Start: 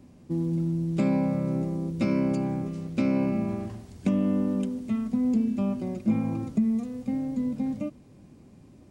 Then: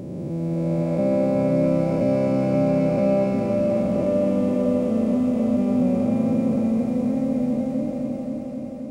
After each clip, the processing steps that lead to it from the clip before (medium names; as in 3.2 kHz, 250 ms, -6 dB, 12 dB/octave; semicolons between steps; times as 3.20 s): spectral blur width 934 ms; FFT filter 360 Hz 0 dB, 570 Hz +14 dB, 900 Hz +1 dB; multi-head delay 264 ms, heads first and second, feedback 69%, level -10 dB; trim +5 dB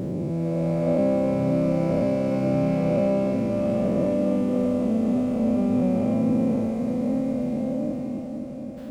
every event in the spectrogram widened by 240 ms; reverb removal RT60 2 s; sliding maximum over 3 samples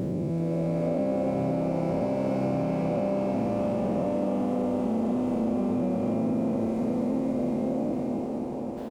compression, threshold -24 dBFS, peak gain reduction 6.5 dB; on a send: frequency-shifting echo 382 ms, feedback 59%, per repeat +110 Hz, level -10 dB